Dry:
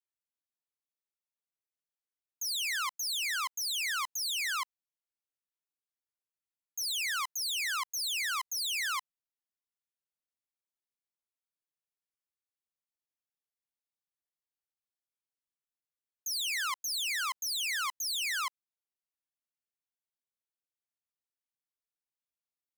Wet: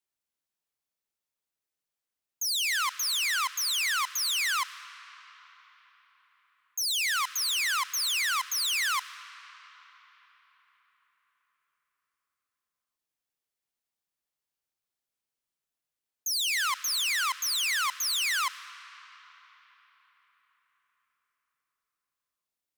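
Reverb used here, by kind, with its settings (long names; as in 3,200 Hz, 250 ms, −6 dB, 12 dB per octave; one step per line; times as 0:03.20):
comb and all-pass reverb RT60 4.8 s, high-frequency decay 0.7×, pre-delay 55 ms, DRR 14.5 dB
level +5 dB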